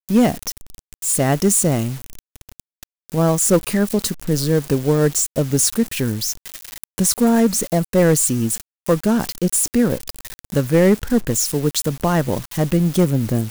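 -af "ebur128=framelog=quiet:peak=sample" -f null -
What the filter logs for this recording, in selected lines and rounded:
Integrated loudness:
  I:         -18.2 LUFS
  Threshold: -28.8 LUFS
Loudness range:
  LRA:         2.2 LU
  Threshold: -38.8 LUFS
  LRA low:   -20.0 LUFS
  LRA high:  -17.8 LUFS
Sample peak:
  Peak:       -4.8 dBFS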